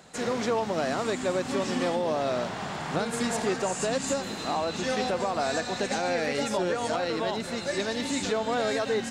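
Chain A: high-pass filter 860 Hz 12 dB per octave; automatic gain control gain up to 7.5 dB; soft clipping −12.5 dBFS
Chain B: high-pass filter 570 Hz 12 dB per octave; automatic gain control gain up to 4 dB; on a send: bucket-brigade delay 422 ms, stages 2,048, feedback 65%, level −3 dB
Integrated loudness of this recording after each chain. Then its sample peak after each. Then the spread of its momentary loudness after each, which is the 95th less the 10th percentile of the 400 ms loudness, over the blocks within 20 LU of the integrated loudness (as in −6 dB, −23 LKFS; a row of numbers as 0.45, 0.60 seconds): −26.0, −26.0 LKFS; −14.0, −11.0 dBFS; 3, 3 LU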